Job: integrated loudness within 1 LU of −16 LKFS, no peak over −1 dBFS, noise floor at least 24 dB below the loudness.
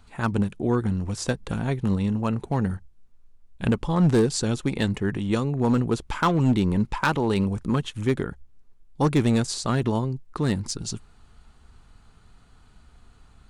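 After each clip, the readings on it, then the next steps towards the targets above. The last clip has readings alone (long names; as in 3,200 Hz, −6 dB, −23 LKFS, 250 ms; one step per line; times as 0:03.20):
share of clipped samples 0.8%; peaks flattened at −14.0 dBFS; integrated loudness −25.0 LKFS; sample peak −14.0 dBFS; target loudness −16.0 LKFS
→ clipped peaks rebuilt −14 dBFS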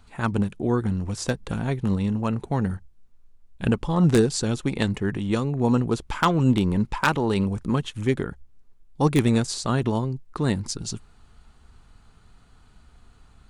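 share of clipped samples 0.0%; integrated loudness −24.5 LKFS; sample peak −5.0 dBFS; target loudness −16.0 LKFS
→ level +8.5 dB
brickwall limiter −1 dBFS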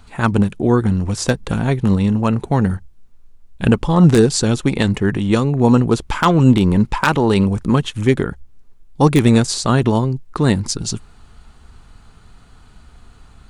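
integrated loudness −16.5 LKFS; sample peak −1.0 dBFS; background noise floor −46 dBFS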